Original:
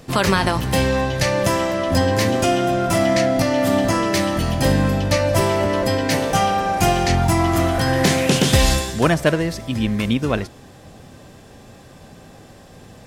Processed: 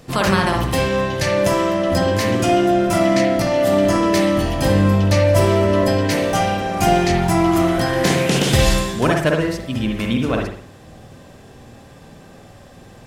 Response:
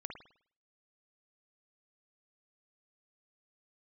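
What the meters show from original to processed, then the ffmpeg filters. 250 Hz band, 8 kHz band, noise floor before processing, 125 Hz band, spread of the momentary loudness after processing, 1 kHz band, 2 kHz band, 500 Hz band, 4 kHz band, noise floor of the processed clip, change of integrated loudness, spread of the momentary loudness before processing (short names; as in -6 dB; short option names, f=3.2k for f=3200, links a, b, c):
+2.0 dB, -1.5 dB, -44 dBFS, +1.0 dB, 5 LU, +0.5 dB, 0.0 dB, +2.5 dB, -0.5 dB, -43 dBFS, +1.5 dB, 4 LU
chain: -filter_complex "[1:a]atrim=start_sample=2205[a];[0:a][a]afir=irnorm=-1:irlink=0,volume=3dB"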